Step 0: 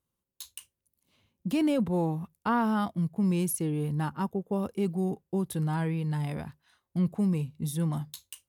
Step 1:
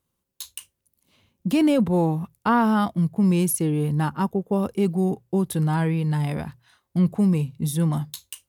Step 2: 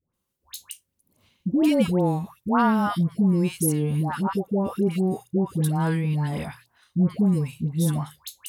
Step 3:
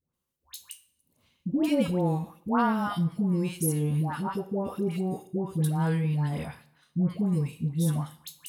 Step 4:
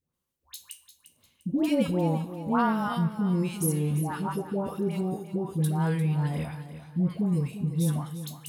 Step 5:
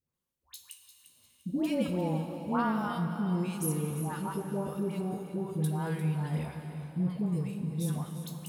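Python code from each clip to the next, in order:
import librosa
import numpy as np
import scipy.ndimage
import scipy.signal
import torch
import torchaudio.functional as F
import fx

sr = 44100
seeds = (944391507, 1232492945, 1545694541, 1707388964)

y1 = fx.hum_notches(x, sr, base_hz=60, count=2)
y1 = y1 * librosa.db_to_amplitude(7.0)
y2 = fx.dispersion(y1, sr, late='highs', ms=138.0, hz=1000.0)
y2 = y2 * librosa.db_to_amplitude(-1.0)
y3 = fx.rev_double_slope(y2, sr, seeds[0], early_s=0.51, late_s=2.2, knee_db=-28, drr_db=10.0)
y3 = y3 * librosa.db_to_amplitude(-5.0)
y4 = fx.echo_feedback(y3, sr, ms=349, feedback_pct=34, wet_db=-12)
y5 = fx.rev_plate(y4, sr, seeds[1], rt60_s=4.3, hf_ratio=0.9, predelay_ms=0, drr_db=6.5)
y5 = y5 * librosa.db_to_amplitude(-5.0)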